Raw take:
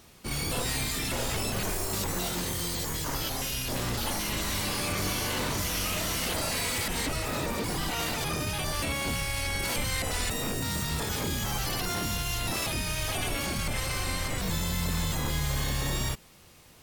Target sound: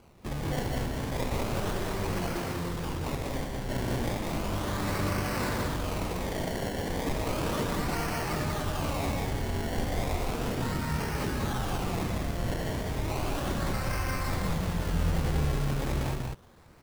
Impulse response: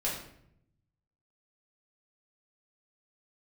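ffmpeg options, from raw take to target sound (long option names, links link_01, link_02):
-filter_complex "[0:a]lowpass=frequency=2200:width=0.5412,lowpass=frequency=2200:width=1.3066,acrusher=samples=24:mix=1:aa=0.000001:lfo=1:lforange=24:lforate=0.34,asplit=2[link_01][link_02];[link_02]aecho=0:1:122.4|192.4:0.282|0.708[link_03];[link_01][link_03]amix=inputs=2:normalize=0"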